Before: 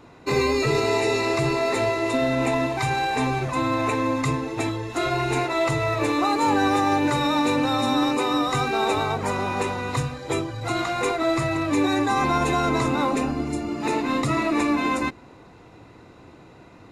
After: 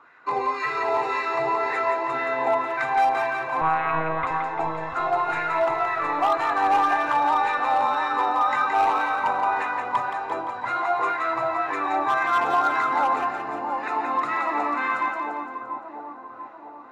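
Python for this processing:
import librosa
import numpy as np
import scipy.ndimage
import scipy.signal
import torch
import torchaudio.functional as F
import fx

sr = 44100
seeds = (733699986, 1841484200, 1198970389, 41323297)

y = fx.wah_lfo(x, sr, hz=1.9, low_hz=790.0, high_hz=1700.0, q=4.5)
y = fx.clip_asym(y, sr, top_db=-25.0, bottom_db=-24.0)
y = fx.lpc_monotone(y, sr, seeds[0], pitch_hz=160.0, order=10, at=(3.61, 4.27))
y = fx.echo_split(y, sr, split_hz=1000.0, low_ms=690, high_ms=172, feedback_pct=52, wet_db=-4.5)
y = F.gain(torch.from_numpy(y), 8.5).numpy()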